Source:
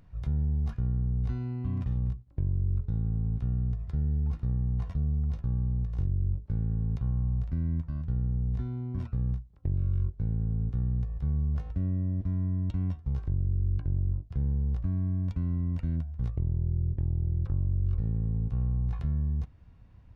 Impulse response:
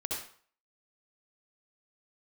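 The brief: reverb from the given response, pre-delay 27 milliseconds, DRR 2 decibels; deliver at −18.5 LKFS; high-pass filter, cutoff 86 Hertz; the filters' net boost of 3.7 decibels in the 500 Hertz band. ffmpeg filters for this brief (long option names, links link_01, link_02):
-filter_complex "[0:a]highpass=86,equalizer=frequency=500:width_type=o:gain=5,asplit=2[link_01][link_02];[1:a]atrim=start_sample=2205,adelay=27[link_03];[link_02][link_03]afir=irnorm=-1:irlink=0,volume=-5.5dB[link_04];[link_01][link_04]amix=inputs=2:normalize=0,volume=13dB"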